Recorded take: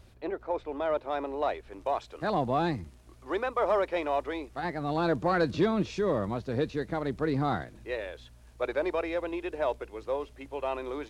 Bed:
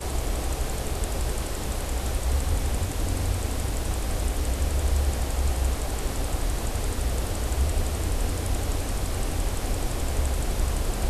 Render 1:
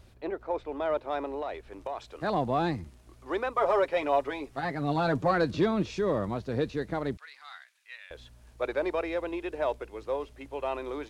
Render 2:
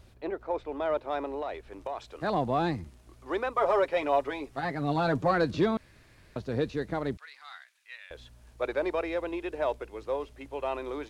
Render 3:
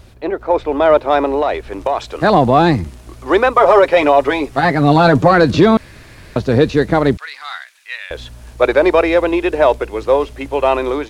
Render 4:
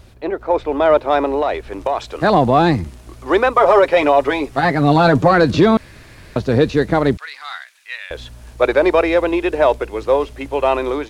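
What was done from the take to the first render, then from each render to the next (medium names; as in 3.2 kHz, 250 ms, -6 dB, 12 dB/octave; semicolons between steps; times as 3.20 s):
1.36–2.10 s: compression, threshold -30 dBFS; 3.55–5.31 s: comb 7.3 ms; 7.17–8.11 s: ladder high-pass 1.4 kHz, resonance 20%
5.77–6.36 s: room tone
level rider gain up to 5.5 dB; loudness maximiser +13 dB
trim -2 dB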